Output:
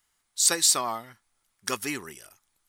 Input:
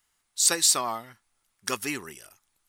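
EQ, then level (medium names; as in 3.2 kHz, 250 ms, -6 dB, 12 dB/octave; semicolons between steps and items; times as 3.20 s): band-stop 2.7 kHz, Q 25; 0.0 dB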